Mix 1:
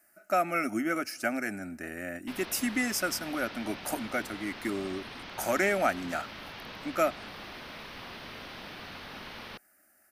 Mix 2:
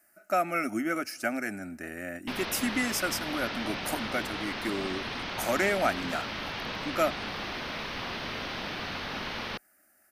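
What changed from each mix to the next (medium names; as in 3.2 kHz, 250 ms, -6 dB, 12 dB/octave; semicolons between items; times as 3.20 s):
background +8.0 dB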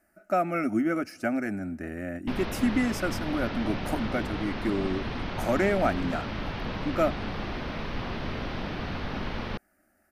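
master: add tilt EQ -3 dB/octave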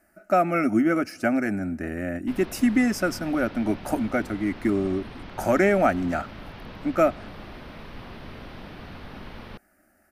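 speech +5.0 dB; background -7.5 dB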